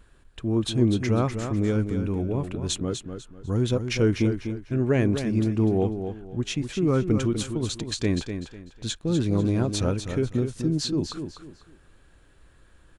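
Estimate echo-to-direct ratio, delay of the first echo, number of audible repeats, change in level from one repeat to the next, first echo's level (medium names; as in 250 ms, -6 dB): -7.5 dB, 248 ms, 3, -11.0 dB, -8.0 dB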